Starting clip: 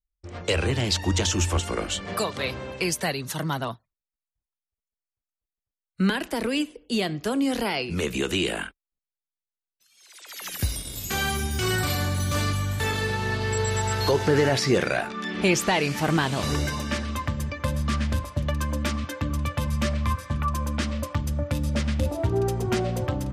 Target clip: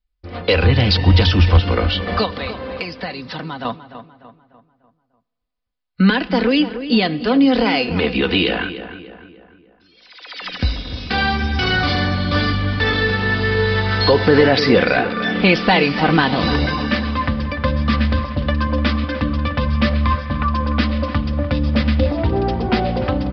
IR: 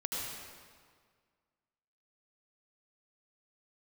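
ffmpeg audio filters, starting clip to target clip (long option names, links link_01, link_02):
-filter_complex "[0:a]asettb=1/sr,asplit=3[link_01][link_02][link_03];[link_01]atrim=end=0.624[link_04];[link_02]atrim=start=0.62:end=1.61,asetpts=PTS-STARTPTS,afade=type=in:duration=0.004:curve=qsin,afade=type=out:start_time=0.986:duration=0.004:curve=qsin,lowshelf=frequency=180:width_type=q:width=1.5:gain=7[link_05];[link_03]atrim=start=1.606[link_06];[link_04][link_05]acrossfade=duration=0.004:curve1=hsin:curve2=qsin[link_07];[link_07][link_06]acrossfade=duration=0.004:curve1=qsin:curve2=hsin,aresample=11025,aresample=44100,asettb=1/sr,asplit=3[link_08][link_09][link_10];[link_08]atrim=end=2.254[link_11];[link_09]atrim=start=2.25:end=3.65,asetpts=PTS-STARTPTS,afade=type=in:duration=0.004:curve=qsin,afade=type=out:start_time=1.396:duration=0.004:curve=qsin,acompressor=threshold=-33dB:ratio=6[link_12];[link_10]atrim=start=3.646[link_13];[link_11][link_12]acrossfade=duration=0.004:curve1=hsin:curve2=qsin[link_14];[link_14][link_13]acrossfade=duration=0.004:curve1=qsin:curve2=hsin,aecho=1:1:4:0.52,asplit=2[link_15][link_16];[link_16]adelay=297,lowpass=frequency=2600:poles=1,volume=-11.5dB,asplit=2[link_17][link_18];[link_18]adelay=297,lowpass=frequency=2600:poles=1,volume=0.46,asplit=2[link_19][link_20];[link_20]adelay=297,lowpass=frequency=2600:poles=1,volume=0.46,asplit=2[link_21][link_22];[link_22]adelay=297,lowpass=frequency=2600:poles=1,volume=0.46,asplit=2[link_23][link_24];[link_24]adelay=297,lowpass=frequency=2600:poles=1,volume=0.46[link_25];[link_15][link_17][link_19][link_21][link_23][link_25]amix=inputs=6:normalize=0,asplit=2[link_26][link_27];[1:a]atrim=start_sample=2205[link_28];[link_27][link_28]afir=irnorm=-1:irlink=0,volume=-26dB[link_29];[link_26][link_29]amix=inputs=2:normalize=0,alimiter=level_in=8.5dB:limit=-1dB:release=50:level=0:latency=1,volume=-1dB"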